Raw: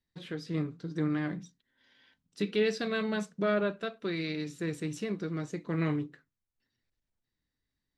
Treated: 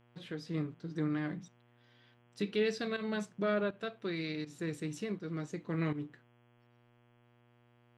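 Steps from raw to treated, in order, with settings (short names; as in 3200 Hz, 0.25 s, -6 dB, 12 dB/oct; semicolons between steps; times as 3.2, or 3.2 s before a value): pump 81 bpm, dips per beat 1, -13 dB, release 0.146 s; buzz 120 Hz, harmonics 28, -63 dBFS -5 dB/oct; gain -3.5 dB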